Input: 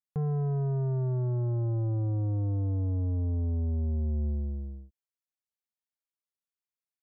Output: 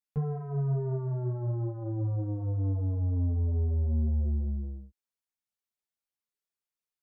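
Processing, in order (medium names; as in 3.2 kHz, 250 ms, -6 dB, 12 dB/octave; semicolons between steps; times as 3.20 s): three-phase chorus; trim +2.5 dB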